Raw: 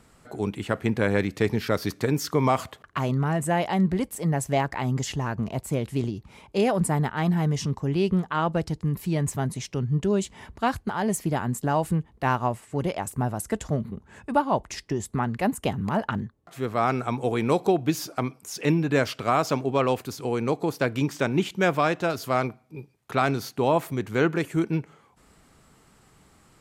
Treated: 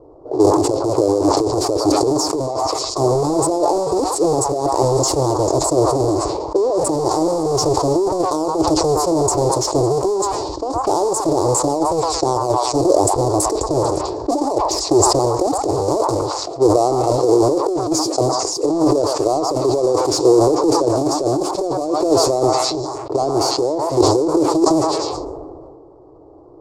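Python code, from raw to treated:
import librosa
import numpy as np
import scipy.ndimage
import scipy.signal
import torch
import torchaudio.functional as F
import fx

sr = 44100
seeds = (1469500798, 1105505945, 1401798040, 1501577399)

y = fx.halfwave_hold(x, sr)
y = fx.bass_treble(y, sr, bass_db=-5, treble_db=5)
y = fx.notch(y, sr, hz=6100.0, q=20.0)
y = fx.echo_stepped(y, sr, ms=111, hz=1300.0, octaves=0.7, feedback_pct=70, wet_db=-2)
y = fx.over_compress(y, sr, threshold_db=-23.0, ratio=-0.5)
y = fx.env_lowpass(y, sr, base_hz=1100.0, full_db=-22.0)
y = fx.curve_eq(y, sr, hz=(130.0, 220.0, 310.0, 720.0, 1100.0, 1600.0, 3100.0, 4600.0, 7400.0, 15000.0), db=(0, -19, 14, 7, -2, -28, -27, -4, -2, -24))
y = fx.sustainer(y, sr, db_per_s=27.0)
y = y * librosa.db_to_amplitude(2.0)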